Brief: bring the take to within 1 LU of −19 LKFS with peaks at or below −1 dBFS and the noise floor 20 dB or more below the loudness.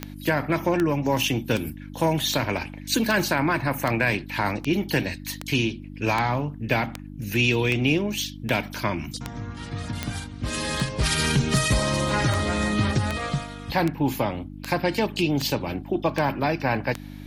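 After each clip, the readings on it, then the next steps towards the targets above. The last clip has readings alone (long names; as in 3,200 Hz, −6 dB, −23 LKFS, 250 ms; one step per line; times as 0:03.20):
number of clicks 23; mains hum 50 Hz; hum harmonics up to 300 Hz; level of the hum −36 dBFS; integrated loudness −25.0 LKFS; sample peak −7.5 dBFS; target loudness −19.0 LKFS
→ click removal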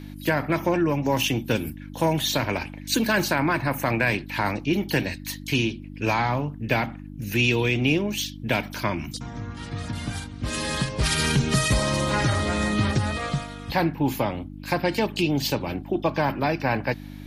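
number of clicks 0; mains hum 50 Hz; hum harmonics up to 300 Hz; level of the hum −36 dBFS
→ hum removal 50 Hz, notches 6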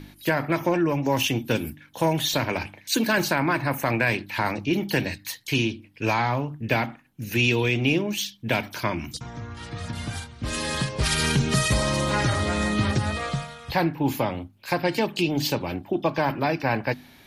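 mains hum none found; integrated loudness −25.0 LKFS; sample peak −8.0 dBFS; target loudness −19.0 LKFS
→ level +6 dB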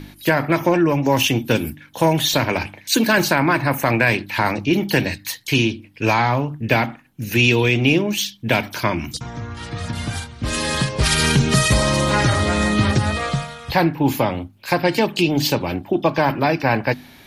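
integrated loudness −19.0 LKFS; sample peak −2.0 dBFS; background noise floor −46 dBFS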